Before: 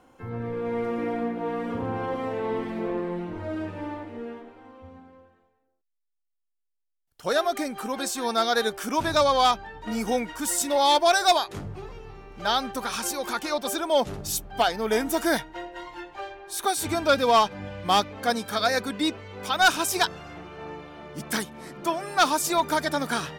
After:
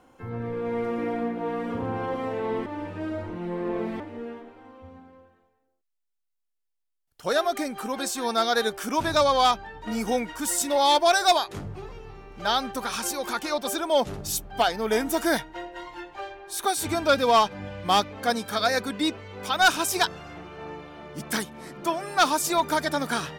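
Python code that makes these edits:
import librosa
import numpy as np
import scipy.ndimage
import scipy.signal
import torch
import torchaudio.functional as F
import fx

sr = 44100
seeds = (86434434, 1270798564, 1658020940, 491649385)

y = fx.edit(x, sr, fx.reverse_span(start_s=2.66, length_s=1.34), tone=tone)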